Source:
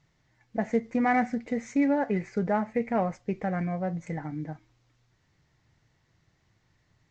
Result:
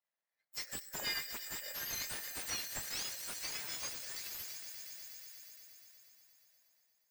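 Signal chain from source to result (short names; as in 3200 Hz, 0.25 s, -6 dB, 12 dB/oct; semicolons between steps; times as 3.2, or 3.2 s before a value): spectrum mirrored in octaves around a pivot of 1900 Hz; tilt shelf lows -7.5 dB, about 740 Hz; compressor 3:1, threshold -25 dBFS, peak gain reduction 7.5 dB; swelling echo 0.119 s, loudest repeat 5, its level -14 dB; on a send at -14 dB: reverb RT60 0.80 s, pre-delay 0.1 s; on the sum: power-law curve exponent 1.4; slew limiter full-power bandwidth 110 Hz; gain -2 dB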